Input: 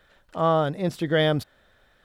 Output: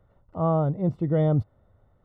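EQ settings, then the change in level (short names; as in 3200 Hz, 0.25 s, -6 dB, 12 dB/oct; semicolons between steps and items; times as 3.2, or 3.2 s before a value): polynomial smoothing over 65 samples; bell 100 Hz +12 dB 1.3 oct; low shelf 180 Hz +4 dB; -4.0 dB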